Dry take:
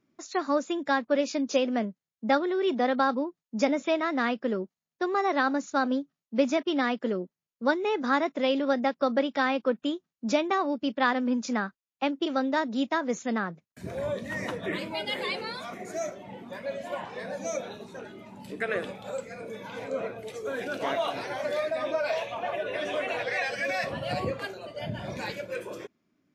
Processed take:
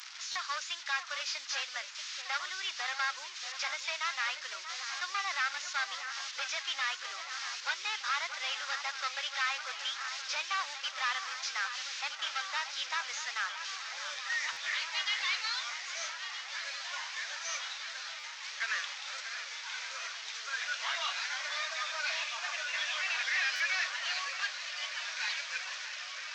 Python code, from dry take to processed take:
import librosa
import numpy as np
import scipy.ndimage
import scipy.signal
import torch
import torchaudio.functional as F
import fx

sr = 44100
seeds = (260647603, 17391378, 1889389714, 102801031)

y = fx.delta_mod(x, sr, bps=32000, step_db=-38.5)
y = scipy.signal.sosfilt(scipy.signal.butter(4, 1200.0, 'highpass', fs=sr, output='sos'), y)
y = fx.high_shelf(y, sr, hz=3900.0, db=11.0)
y = fx.echo_alternate(y, sr, ms=634, hz=2300.0, feedback_pct=89, wet_db=-10.0)
y = fx.buffer_glitch(y, sr, at_s=(0.31, 14.52, 18.19, 23.55), block=512, repeats=3)